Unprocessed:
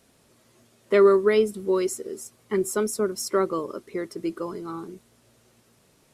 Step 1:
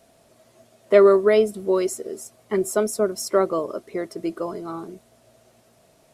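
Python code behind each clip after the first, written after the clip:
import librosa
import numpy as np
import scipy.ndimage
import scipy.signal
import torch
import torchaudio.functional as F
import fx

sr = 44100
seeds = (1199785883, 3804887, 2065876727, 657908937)

y = fx.peak_eq(x, sr, hz=660.0, db=14.5, octaves=0.34)
y = y * 10.0 ** (1.0 / 20.0)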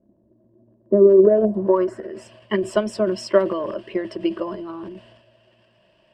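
y = fx.filter_sweep_lowpass(x, sr, from_hz=300.0, to_hz=2900.0, start_s=0.98, end_s=2.3, q=2.7)
y = fx.transient(y, sr, attack_db=8, sustain_db=12)
y = fx.ripple_eq(y, sr, per_octave=1.3, db=11)
y = y * 10.0 ** (-6.0 / 20.0)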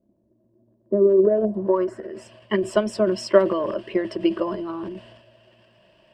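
y = fx.rider(x, sr, range_db=4, speed_s=2.0)
y = y * 10.0 ** (-1.5 / 20.0)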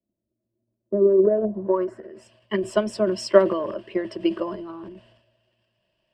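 y = fx.band_widen(x, sr, depth_pct=40)
y = y * 10.0 ** (-2.0 / 20.0)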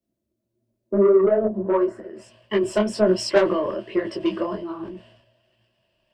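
y = 10.0 ** (-14.0 / 20.0) * np.tanh(x / 10.0 ** (-14.0 / 20.0))
y = fx.detune_double(y, sr, cents=43)
y = y * 10.0 ** (7.5 / 20.0)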